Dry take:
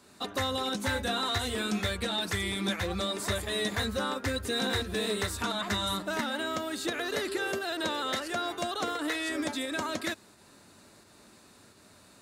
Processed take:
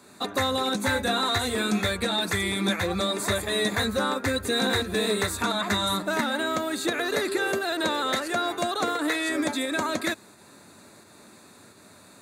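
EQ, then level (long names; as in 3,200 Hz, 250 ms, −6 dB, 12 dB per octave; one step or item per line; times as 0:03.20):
high-pass filter 100 Hz 12 dB per octave
parametric band 5,300 Hz −9.5 dB 0.21 octaves
notch filter 3,000 Hz, Q 5.3
+6.0 dB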